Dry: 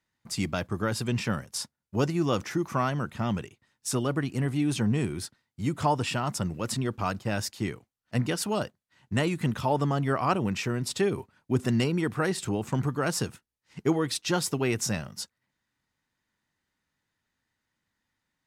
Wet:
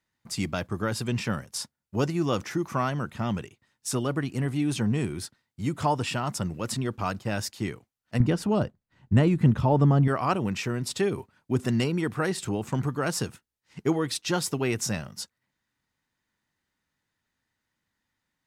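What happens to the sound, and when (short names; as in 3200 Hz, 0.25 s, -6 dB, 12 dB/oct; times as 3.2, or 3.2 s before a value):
8.2–10.08 tilt -3 dB/oct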